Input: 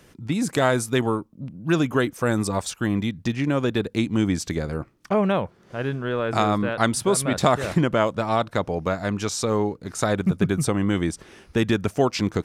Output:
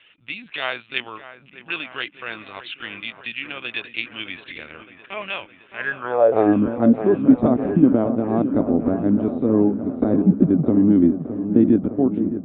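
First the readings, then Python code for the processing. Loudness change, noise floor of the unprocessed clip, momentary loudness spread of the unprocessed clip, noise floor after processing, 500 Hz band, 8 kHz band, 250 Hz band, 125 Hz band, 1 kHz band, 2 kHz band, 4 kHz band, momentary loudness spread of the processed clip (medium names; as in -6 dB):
+4.0 dB, -55 dBFS, 7 LU, -51 dBFS, +1.5 dB, under -40 dB, +6.0 dB, -2.0 dB, -4.0 dB, +0.5 dB, -1.0 dB, 17 LU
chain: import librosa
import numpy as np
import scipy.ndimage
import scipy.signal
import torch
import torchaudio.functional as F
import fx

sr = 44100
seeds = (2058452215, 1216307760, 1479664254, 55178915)

p1 = fx.fade_out_tail(x, sr, length_s=0.86)
p2 = fx.low_shelf(p1, sr, hz=150.0, db=9.0)
p3 = fx.lpc_vocoder(p2, sr, seeds[0], excitation='pitch_kept', order=16)
p4 = fx.rider(p3, sr, range_db=5, speed_s=0.5)
p5 = p3 + (p4 * 10.0 ** (-3.0 / 20.0))
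p6 = fx.filter_sweep_bandpass(p5, sr, from_hz=2700.0, to_hz=260.0, start_s=5.7, end_s=6.57, q=4.5)
p7 = p6 + fx.echo_wet_lowpass(p6, sr, ms=614, feedback_pct=66, hz=1700.0, wet_db=-10.5, dry=0)
p8 = fx.dynamic_eq(p7, sr, hz=710.0, q=0.74, threshold_db=-39.0, ratio=4.0, max_db=5)
y = p8 * 10.0 ** (7.5 / 20.0)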